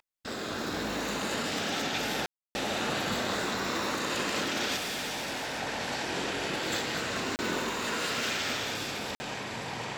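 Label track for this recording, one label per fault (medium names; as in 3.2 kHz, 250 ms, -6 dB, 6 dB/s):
2.260000	2.550000	dropout 290 ms
4.760000	5.600000	clipped -31.5 dBFS
7.360000	7.390000	dropout 29 ms
9.150000	9.200000	dropout 50 ms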